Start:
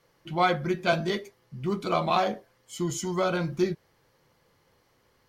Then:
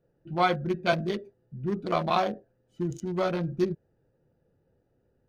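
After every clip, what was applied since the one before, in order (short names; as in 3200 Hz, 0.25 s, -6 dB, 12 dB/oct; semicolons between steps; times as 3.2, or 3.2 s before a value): Wiener smoothing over 41 samples; notch 7300 Hz, Q 5.7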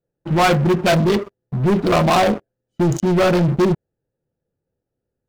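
sample leveller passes 5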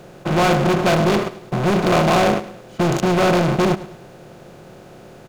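per-bin compression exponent 0.4; feedback echo 0.105 s, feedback 39%, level -16 dB; gain -5.5 dB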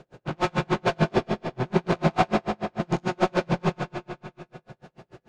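air absorption 77 m; reverb RT60 2.4 s, pre-delay 8 ms, DRR -1 dB; dB-linear tremolo 6.8 Hz, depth 39 dB; gain -4.5 dB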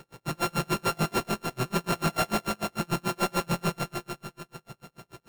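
sample sorter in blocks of 32 samples; soft clip -20 dBFS, distortion -10 dB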